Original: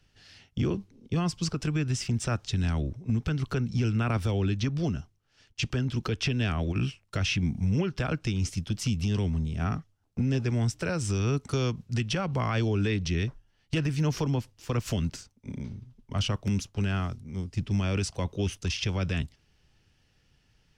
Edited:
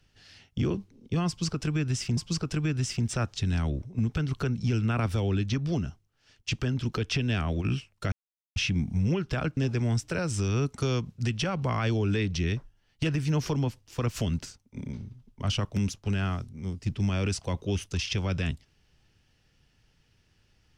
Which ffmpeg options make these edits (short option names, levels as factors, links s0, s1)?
-filter_complex "[0:a]asplit=4[s0][s1][s2][s3];[s0]atrim=end=2.172[s4];[s1]atrim=start=1.278:end=7.23,asetpts=PTS-STARTPTS,afade=t=out:st=5.948:d=0.004:c=hsin,apad=pad_dur=0.44[s5];[s2]atrim=start=7.23:end=8.242,asetpts=PTS-STARTPTS,afade=t=in:d=0.004:c=hsin[s6];[s3]atrim=start=10.278[s7];[s5][s6]concat=n=2:v=0:a=1[s8];[s4][s8]acrossfade=d=0.004:c1=hsin:c2=hsin[s9];[s9][s7]acrossfade=d=0.004:c1=hsin:c2=hsin"